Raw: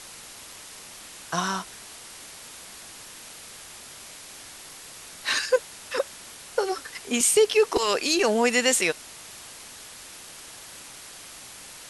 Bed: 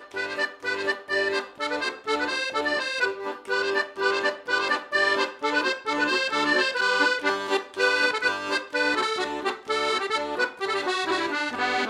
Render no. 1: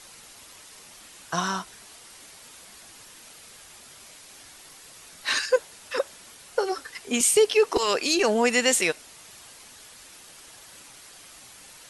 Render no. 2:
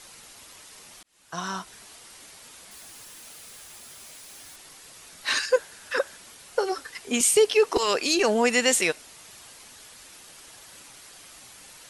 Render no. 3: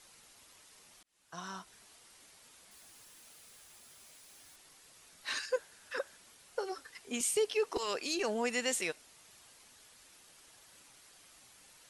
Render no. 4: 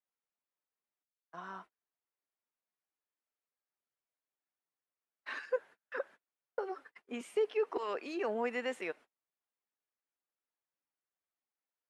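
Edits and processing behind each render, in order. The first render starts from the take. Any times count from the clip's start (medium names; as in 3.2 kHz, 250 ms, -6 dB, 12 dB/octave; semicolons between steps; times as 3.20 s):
noise reduction 6 dB, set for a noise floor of -44 dBFS
1.03–1.77 s: fade in; 2.71–4.56 s: zero-crossing glitches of -47 dBFS; 5.56–6.17 s: peaking EQ 1.6 kHz +10 dB 0.31 oct
trim -12 dB
gate -50 dBFS, range -34 dB; three-band isolator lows -18 dB, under 200 Hz, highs -24 dB, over 2.4 kHz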